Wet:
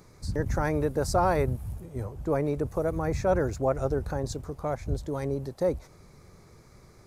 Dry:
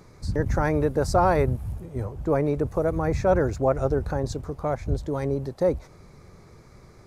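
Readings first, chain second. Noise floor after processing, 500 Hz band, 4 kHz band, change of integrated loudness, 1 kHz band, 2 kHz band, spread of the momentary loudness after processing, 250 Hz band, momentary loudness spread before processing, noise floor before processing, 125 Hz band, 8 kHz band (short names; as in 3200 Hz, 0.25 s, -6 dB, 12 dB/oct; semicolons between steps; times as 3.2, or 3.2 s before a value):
-55 dBFS, -4.0 dB, -1.0 dB, -4.0 dB, -4.0 dB, -3.5 dB, 9 LU, -4.0 dB, 9 LU, -51 dBFS, -4.0 dB, +0.5 dB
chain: high shelf 6100 Hz +8 dB; gain -4 dB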